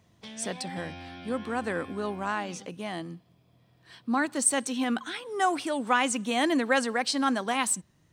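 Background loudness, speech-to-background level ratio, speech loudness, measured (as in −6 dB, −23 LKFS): −44.5 LKFS, 16.0 dB, −28.5 LKFS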